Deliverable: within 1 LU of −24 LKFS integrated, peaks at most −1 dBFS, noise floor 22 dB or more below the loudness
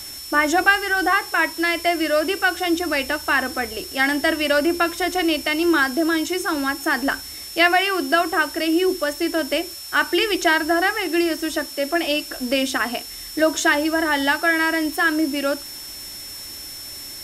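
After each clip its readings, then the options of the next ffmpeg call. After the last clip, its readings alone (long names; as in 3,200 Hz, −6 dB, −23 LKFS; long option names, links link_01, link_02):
interfering tone 5,400 Hz; level of the tone −35 dBFS; background noise floor −35 dBFS; target noise floor −42 dBFS; integrated loudness −20.0 LKFS; sample peak −3.5 dBFS; target loudness −24.0 LKFS
→ -af "bandreject=frequency=5400:width=30"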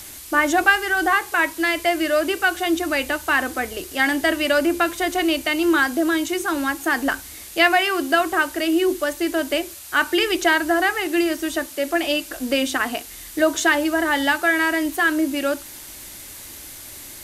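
interfering tone none found; background noise floor −39 dBFS; target noise floor −43 dBFS
→ -af "afftdn=noise_reduction=6:noise_floor=-39"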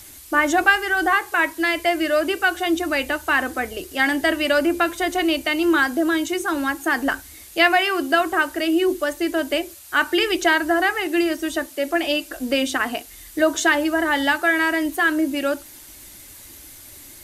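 background noise floor −43 dBFS; integrated loudness −20.5 LKFS; sample peak −3.5 dBFS; target loudness −24.0 LKFS
→ -af "volume=-3.5dB"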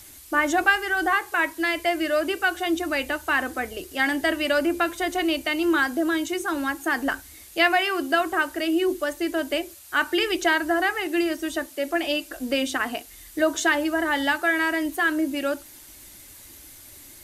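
integrated loudness −24.0 LKFS; sample peak −7.0 dBFS; background noise floor −46 dBFS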